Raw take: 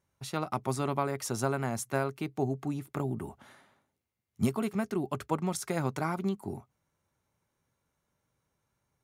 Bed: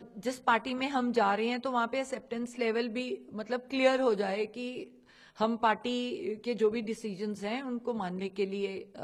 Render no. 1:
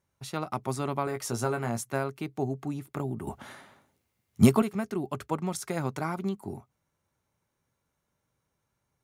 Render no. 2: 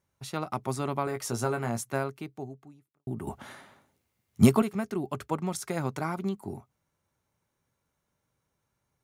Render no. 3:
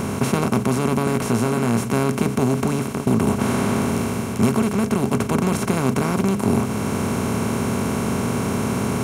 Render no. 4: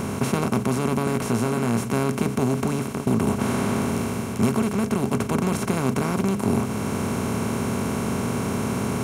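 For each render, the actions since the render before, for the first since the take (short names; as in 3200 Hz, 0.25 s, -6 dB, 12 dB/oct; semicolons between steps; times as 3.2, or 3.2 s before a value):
1.05–1.81 doubler 17 ms -6 dB; 3.27–4.62 gain +9.5 dB
2.02–3.07 fade out quadratic
per-bin compression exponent 0.2; vocal rider within 4 dB 0.5 s
gain -3 dB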